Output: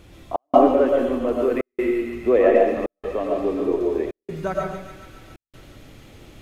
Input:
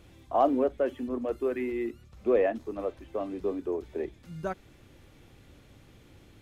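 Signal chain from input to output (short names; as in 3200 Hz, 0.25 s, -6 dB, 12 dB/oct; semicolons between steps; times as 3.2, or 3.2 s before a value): thin delay 0.14 s, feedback 71%, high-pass 1800 Hz, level -5.5 dB; digital reverb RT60 0.73 s, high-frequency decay 0.35×, pre-delay 75 ms, DRR -1 dB; step gate "xx.xxxxxx.xxxx" 84 bpm -60 dB; gain +6.5 dB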